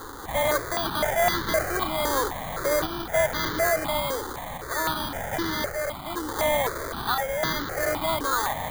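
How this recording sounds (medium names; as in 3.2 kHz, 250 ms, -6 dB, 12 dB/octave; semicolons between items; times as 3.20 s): a quantiser's noise floor 6-bit, dither triangular; random-step tremolo; aliases and images of a low sample rate 2.7 kHz, jitter 0%; notches that jump at a steady rate 3.9 Hz 650–2500 Hz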